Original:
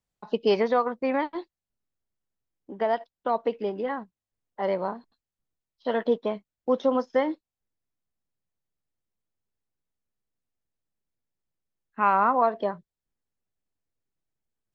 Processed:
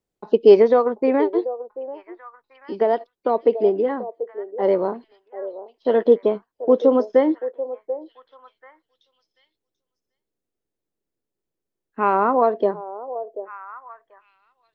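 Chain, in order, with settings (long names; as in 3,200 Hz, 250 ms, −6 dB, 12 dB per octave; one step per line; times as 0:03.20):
parametric band 380 Hz +14 dB 1.3 octaves
echo through a band-pass that steps 737 ms, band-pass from 570 Hz, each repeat 1.4 octaves, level −10.5 dB
level −1 dB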